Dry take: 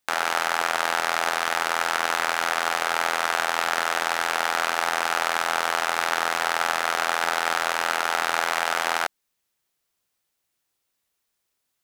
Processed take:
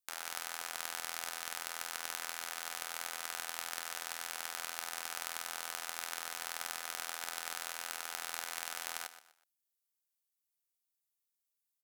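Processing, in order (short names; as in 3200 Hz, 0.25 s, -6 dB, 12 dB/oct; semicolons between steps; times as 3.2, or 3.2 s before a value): pre-emphasis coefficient 0.8; feedback echo 0.124 s, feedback 32%, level -11 dB; added harmonics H 3 -14 dB, 4 -35 dB, 5 -24 dB, 7 -31 dB, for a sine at -8 dBFS; gain -5.5 dB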